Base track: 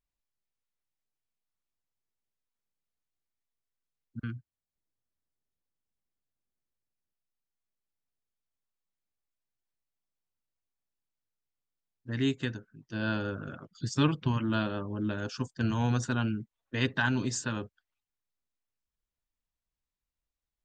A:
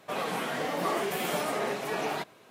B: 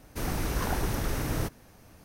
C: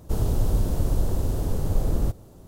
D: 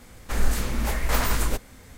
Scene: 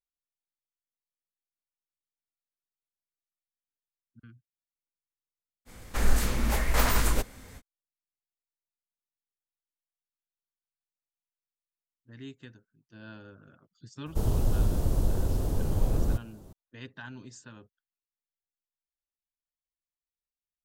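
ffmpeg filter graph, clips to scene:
-filter_complex "[0:a]volume=-15.5dB[a];[4:a]atrim=end=1.97,asetpts=PTS-STARTPTS,volume=-1dB,afade=t=in:d=0.05,afade=t=out:st=1.92:d=0.05,adelay=249165S[b];[3:a]atrim=end=2.47,asetpts=PTS-STARTPTS,volume=-3dB,afade=t=in:d=0.004:c=hsin,afade=t=out:st=2.466:d=0.004:c=hsin,adelay=14060[c];[a][b][c]amix=inputs=3:normalize=0"

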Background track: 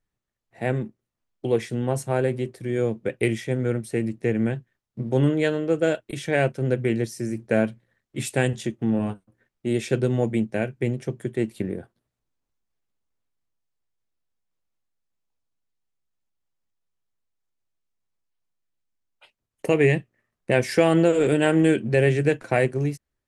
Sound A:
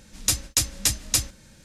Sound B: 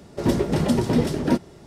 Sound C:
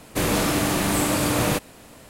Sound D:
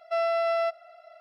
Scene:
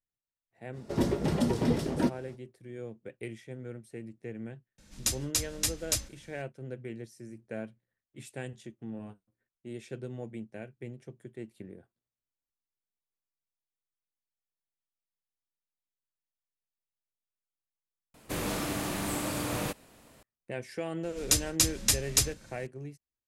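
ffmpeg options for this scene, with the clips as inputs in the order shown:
-filter_complex "[1:a]asplit=2[a][b];[0:a]volume=-17.5dB,asplit=2[c][d];[c]atrim=end=18.144[e];[3:a]atrim=end=2.09,asetpts=PTS-STARTPTS,volume=-11dB[f];[d]atrim=start=20.226[g];[2:a]atrim=end=1.66,asetpts=PTS-STARTPTS,volume=-7dB,afade=t=in:d=0.05,afade=t=out:st=1.61:d=0.05,adelay=720[h];[a]atrim=end=1.64,asetpts=PTS-STARTPTS,volume=-7.5dB,afade=t=in:d=0.004:c=hsin,afade=t=out:st=1.636:d=0.004:c=hsin,adelay=4780[i];[b]atrim=end=1.64,asetpts=PTS-STARTPTS,volume=-3dB,afade=t=in:d=0.004:c=hsin,afade=t=out:st=1.636:d=0.004:c=hsin,adelay=21030[j];[e][f]acrossfade=d=0.004:c1=hsin:c2=hsin[k];[k][g]acrossfade=d=0.004:c1=hsin:c2=hsin[l];[l][h][i][j]amix=inputs=4:normalize=0"

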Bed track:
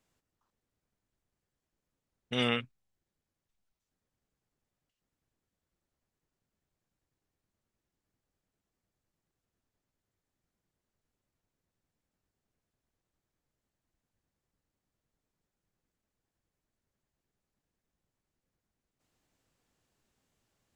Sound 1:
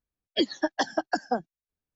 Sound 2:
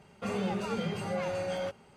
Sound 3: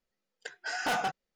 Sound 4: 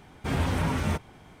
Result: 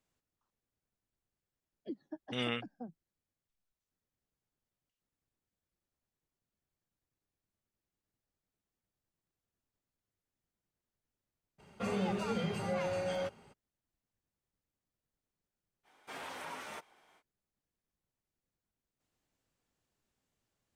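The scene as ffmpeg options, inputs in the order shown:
-filter_complex "[0:a]volume=-6dB[a];[1:a]bandpass=f=170:t=q:w=1.5:csg=0[b];[4:a]highpass=590[c];[b]atrim=end=1.95,asetpts=PTS-STARTPTS,volume=-9dB,afade=t=in:d=0.004:c=hsin,afade=t=out:st=1.946:d=0.004:c=hsin,adelay=1490[d];[2:a]atrim=end=1.96,asetpts=PTS-STARTPTS,volume=-2dB,afade=t=in:d=0.02,afade=t=out:st=1.94:d=0.02,adelay=11580[e];[c]atrim=end=1.4,asetpts=PTS-STARTPTS,volume=-10.5dB,afade=t=in:d=0.05,afade=t=out:st=1.35:d=0.05,adelay=15830[f];[a][d][e][f]amix=inputs=4:normalize=0"

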